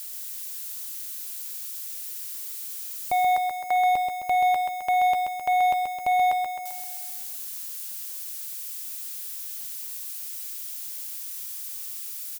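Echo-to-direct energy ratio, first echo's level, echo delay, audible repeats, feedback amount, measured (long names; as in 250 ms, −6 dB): −3.0 dB, −5.0 dB, 131 ms, 7, 58%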